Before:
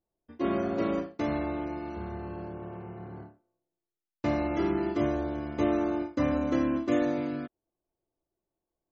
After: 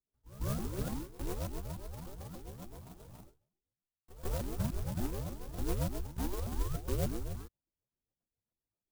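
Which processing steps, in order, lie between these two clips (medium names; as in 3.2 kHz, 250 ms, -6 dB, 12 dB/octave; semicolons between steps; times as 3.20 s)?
sawtooth pitch modulation +8.5 st, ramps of 294 ms; rotary cabinet horn 7.5 Hz; mistuned SSB -370 Hz 320–2100 Hz; on a send: reverse echo 149 ms -17.5 dB; on the sum: sampling jitter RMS 0.12 ms; trim -2.5 dB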